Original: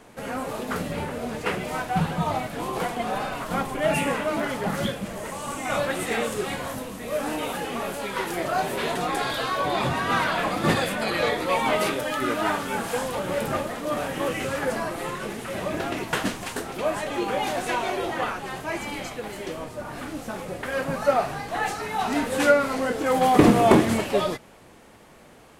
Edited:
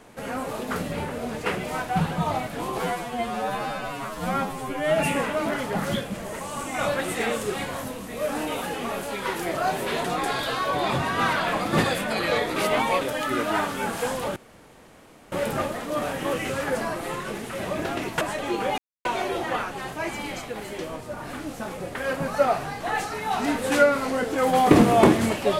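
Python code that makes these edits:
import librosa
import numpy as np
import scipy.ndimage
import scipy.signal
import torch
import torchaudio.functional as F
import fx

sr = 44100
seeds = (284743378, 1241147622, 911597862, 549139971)

y = fx.edit(x, sr, fx.stretch_span(start_s=2.8, length_s=1.09, factor=2.0),
    fx.reverse_span(start_s=11.47, length_s=0.45),
    fx.insert_room_tone(at_s=13.27, length_s=0.96),
    fx.cut(start_s=16.16, length_s=0.73),
    fx.silence(start_s=17.46, length_s=0.27), tone=tone)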